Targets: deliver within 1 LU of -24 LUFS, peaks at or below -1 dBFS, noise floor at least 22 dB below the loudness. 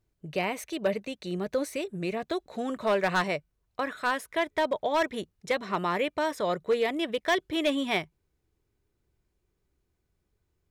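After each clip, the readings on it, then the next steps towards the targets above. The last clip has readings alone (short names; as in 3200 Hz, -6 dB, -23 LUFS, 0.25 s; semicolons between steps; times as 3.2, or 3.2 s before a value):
clipped 0.4%; flat tops at -18.5 dBFS; loudness -29.5 LUFS; peak -18.5 dBFS; loudness target -24.0 LUFS
-> clip repair -18.5 dBFS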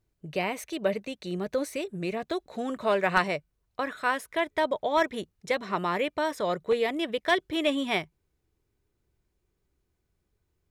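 clipped 0.0%; loudness -29.0 LUFS; peak -9.5 dBFS; loudness target -24.0 LUFS
-> gain +5 dB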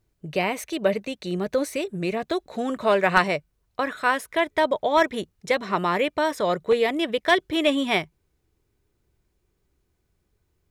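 loudness -24.0 LUFS; peak -4.5 dBFS; noise floor -73 dBFS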